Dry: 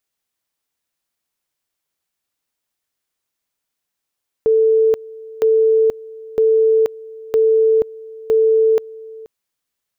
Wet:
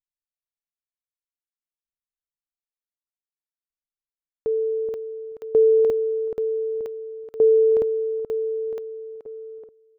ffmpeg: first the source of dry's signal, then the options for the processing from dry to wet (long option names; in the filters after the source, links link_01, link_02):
-f lavfi -i "aevalsrc='pow(10,(-10-21.5*gte(mod(t,0.96),0.48))/20)*sin(2*PI*443*t)':duration=4.8:sample_rate=44100"
-filter_complex "[0:a]anlmdn=2.51,asplit=2[link_01][link_02];[link_02]adelay=428,lowpass=frequency=910:poles=1,volume=-3dB,asplit=2[link_03][link_04];[link_04]adelay=428,lowpass=frequency=910:poles=1,volume=0.17,asplit=2[link_05][link_06];[link_06]adelay=428,lowpass=frequency=910:poles=1,volume=0.17[link_07];[link_03][link_05][link_07]amix=inputs=3:normalize=0[link_08];[link_01][link_08]amix=inputs=2:normalize=0,aeval=exprs='val(0)*pow(10,-20*if(lt(mod(0.54*n/s,1),2*abs(0.54)/1000),1-mod(0.54*n/s,1)/(2*abs(0.54)/1000),(mod(0.54*n/s,1)-2*abs(0.54)/1000)/(1-2*abs(0.54)/1000))/20)':channel_layout=same"